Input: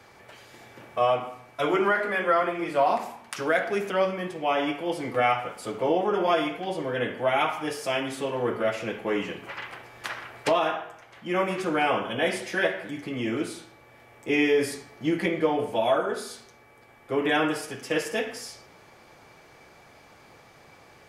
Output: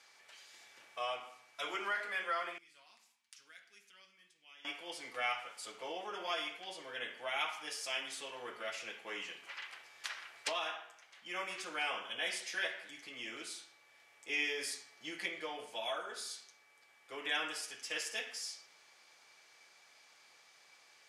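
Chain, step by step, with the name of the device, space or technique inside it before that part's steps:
0:02.58–0:04.65: guitar amp tone stack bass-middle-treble 6-0-2
piezo pickup straight into a mixer (low-pass filter 6,200 Hz 12 dB per octave; first difference)
level +2.5 dB

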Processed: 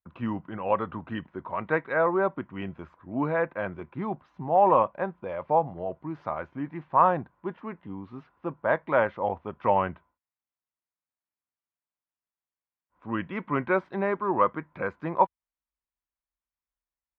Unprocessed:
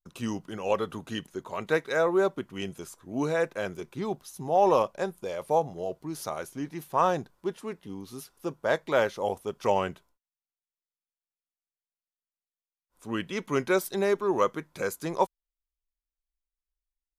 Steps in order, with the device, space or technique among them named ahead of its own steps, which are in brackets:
bass cabinet (loudspeaker in its box 72–2,200 Hz, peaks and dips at 78 Hz +9 dB, 420 Hz −8 dB, 1,000 Hz +5 dB)
level +2 dB

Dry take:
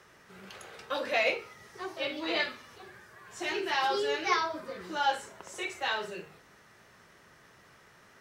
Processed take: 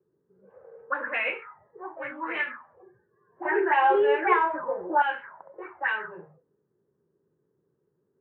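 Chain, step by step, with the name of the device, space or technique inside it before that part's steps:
envelope filter bass rig (envelope-controlled low-pass 370–2,800 Hz up, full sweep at −27 dBFS; loudspeaker in its box 81–2,100 Hz, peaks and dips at 150 Hz +8 dB, 670 Hz −8 dB, 1,000 Hz +5 dB, 1,600 Hz +7 dB)
noise reduction from a noise print of the clip's start 13 dB
0:03.45–0:05.02: flat-topped bell 560 Hz +13 dB
level −3 dB

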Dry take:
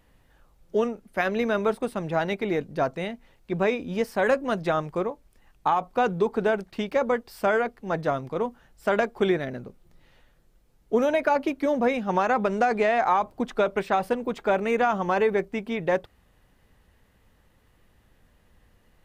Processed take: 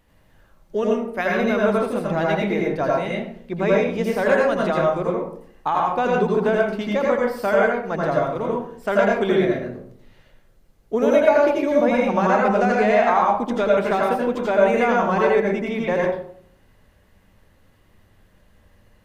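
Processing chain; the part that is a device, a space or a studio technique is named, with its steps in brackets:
bathroom (convolution reverb RT60 0.60 s, pre-delay 78 ms, DRR −3.5 dB)

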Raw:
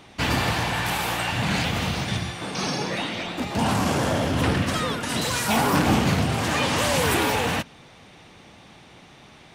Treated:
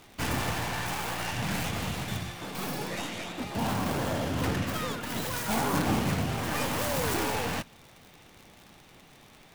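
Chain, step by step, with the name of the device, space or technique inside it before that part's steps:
record under a worn stylus (stylus tracing distortion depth 0.32 ms; surface crackle 91 per second −33 dBFS; pink noise bed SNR 30 dB)
level −7 dB

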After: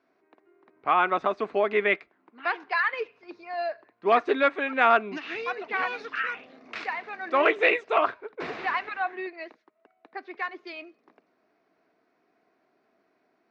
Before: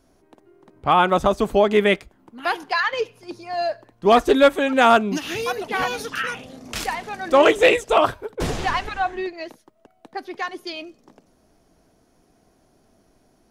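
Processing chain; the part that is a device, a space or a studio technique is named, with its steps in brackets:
phone earpiece (loudspeaker in its box 440–3,500 Hz, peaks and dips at 540 Hz −7 dB, 850 Hz −6 dB, 2,200 Hz +3 dB, 3,200 Hz −10 dB)
level −2.5 dB

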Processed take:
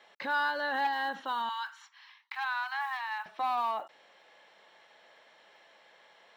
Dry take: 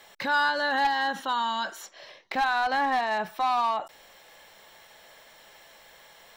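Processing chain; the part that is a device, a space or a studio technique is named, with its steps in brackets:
early digital voice recorder (band-pass filter 230–3,700 Hz; one scale factor per block 7 bits)
0:01.49–0:03.26: Butterworth high-pass 860 Hz 72 dB per octave
level −5.5 dB

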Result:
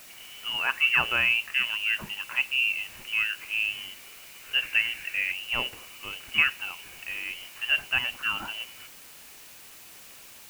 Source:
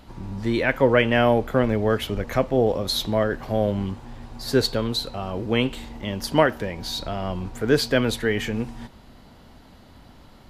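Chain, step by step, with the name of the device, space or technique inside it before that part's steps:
scrambled radio voice (band-pass filter 350–2,900 Hz; voice inversion scrambler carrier 3,200 Hz; white noise bed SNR 18 dB)
0:04.62–0:05.32: flat-topped bell 2,000 Hz +9 dB 1 octave
level −4 dB

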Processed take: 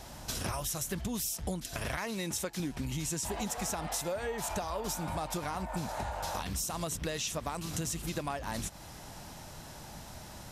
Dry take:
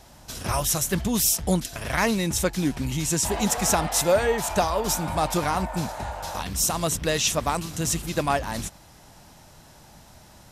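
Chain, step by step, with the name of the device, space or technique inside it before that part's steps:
0:01.97–0:02.60: high-pass filter 240 Hz 6 dB per octave
serial compression, leveller first (downward compressor 2 to 1, threshold −26 dBFS, peak gain reduction 6.5 dB; downward compressor 6 to 1, threshold −36 dBFS, peak gain reduction 14 dB)
level +3 dB

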